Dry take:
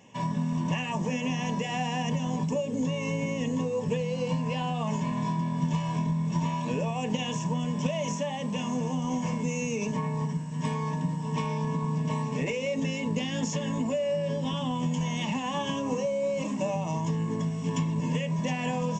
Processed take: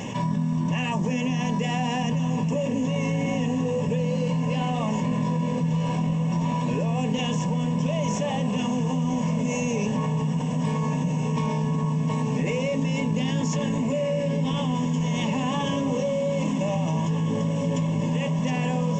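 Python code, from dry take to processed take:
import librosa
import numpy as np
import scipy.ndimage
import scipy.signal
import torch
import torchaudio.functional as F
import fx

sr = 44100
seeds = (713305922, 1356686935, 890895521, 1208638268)

y = fx.low_shelf(x, sr, hz=340.0, db=5.5)
y = fx.echo_diffused(y, sr, ms=1532, feedback_pct=72, wet_db=-8.5)
y = fx.env_flatten(y, sr, amount_pct=70)
y = y * 10.0 ** (-5.0 / 20.0)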